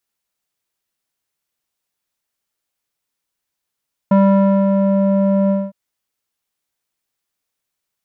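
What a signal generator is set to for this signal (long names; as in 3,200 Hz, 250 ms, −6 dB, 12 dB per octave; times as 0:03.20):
subtractive voice square G3 12 dB per octave, low-pass 640 Hz, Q 1.8, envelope 0.5 octaves, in 0.89 s, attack 5.7 ms, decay 0.54 s, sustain −4.5 dB, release 0.22 s, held 1.39 s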